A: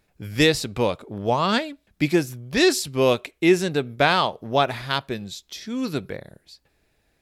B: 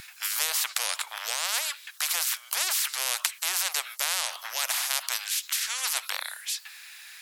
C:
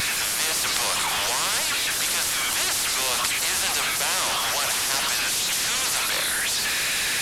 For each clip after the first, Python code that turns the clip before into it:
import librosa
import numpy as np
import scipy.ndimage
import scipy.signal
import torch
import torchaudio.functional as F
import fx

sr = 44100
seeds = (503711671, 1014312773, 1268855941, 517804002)

y1 = scipy.signal.sosfilt(scipy.signal.bessel(8, 1900.0, 'highpass', norm='mag', fs=sr, output='sos'), x)
y1 = fx.spectral_comp(y1, sr, ratio=10.0)
y1 = y1 * librosa.db_to_amplitude(7.5)
y2 = fx.delta_mod(y1, sr, bps=64000, step_db=-19.0)
y2 = y2 * librosa.db_to_amplitude(1.0)